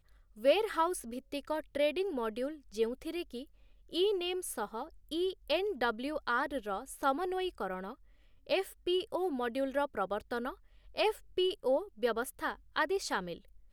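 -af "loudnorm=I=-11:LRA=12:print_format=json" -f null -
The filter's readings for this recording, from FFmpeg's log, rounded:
"input_i" : "-34.4",
"input_tp" : "-15.2",
"input_lra" : "2.5",
"input_thresh" : "-44.8",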